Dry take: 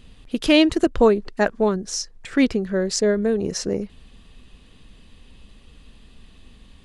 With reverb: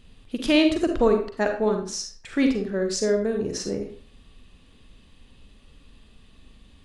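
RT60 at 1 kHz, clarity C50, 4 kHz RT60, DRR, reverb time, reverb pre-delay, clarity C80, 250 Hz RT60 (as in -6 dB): 0.45 s, 6.0 dB, 0.35 s, 4.0 dB, 0.45 s, 38 ms, 11.0 dB, 0.45 s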